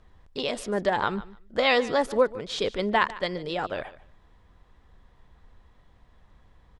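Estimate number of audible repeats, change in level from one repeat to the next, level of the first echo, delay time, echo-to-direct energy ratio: 2, -15.5 dB, -18.0 dB, 0.148 s, -18.0 dB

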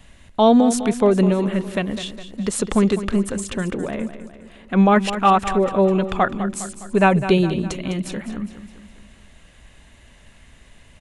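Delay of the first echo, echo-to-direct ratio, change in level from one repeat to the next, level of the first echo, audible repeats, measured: 0.205 s, -10.5 dB, -6.0 dB, -12.0 dB, 4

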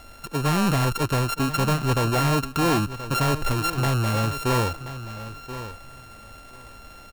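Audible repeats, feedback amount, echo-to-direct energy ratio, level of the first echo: 2, 15%, -13.0 dB, -13.0 dB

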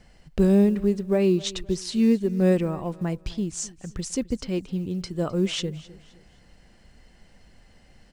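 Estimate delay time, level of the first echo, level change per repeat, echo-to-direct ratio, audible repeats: 0.259 s, -20.0 dB, -9.0 dB, -19.5 dB, 2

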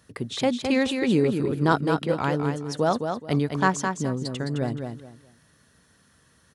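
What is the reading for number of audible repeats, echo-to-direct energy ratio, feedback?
3, -5.5 dB, 25%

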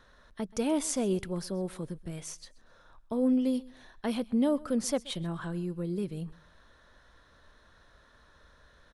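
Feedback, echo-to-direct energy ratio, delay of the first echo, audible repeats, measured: 29%, -21.5 dB, 0.129 s, 2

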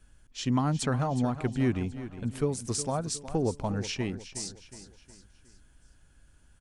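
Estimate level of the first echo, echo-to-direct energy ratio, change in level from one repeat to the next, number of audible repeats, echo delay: -13.0 dB, -12.0 dB, -7.0 dB, 4, 0.364 s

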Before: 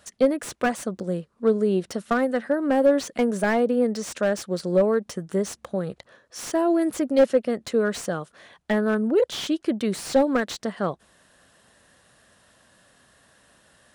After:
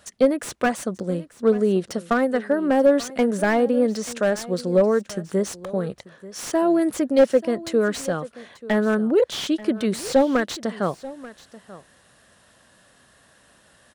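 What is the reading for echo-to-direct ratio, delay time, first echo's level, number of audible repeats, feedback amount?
-18.0 dB, 0.886 s, -18.0 dB, 1, no steady repeat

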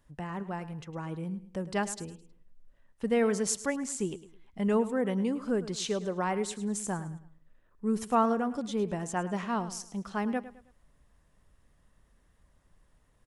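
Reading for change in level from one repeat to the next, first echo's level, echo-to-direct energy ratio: -9.0 dB, -15.0 dB, -14.5 dB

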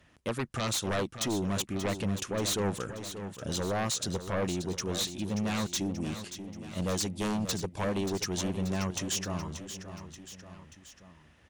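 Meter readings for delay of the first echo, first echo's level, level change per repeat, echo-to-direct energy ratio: 0.582 s, -10.5 dB, -5.0 dB, -9.0 dB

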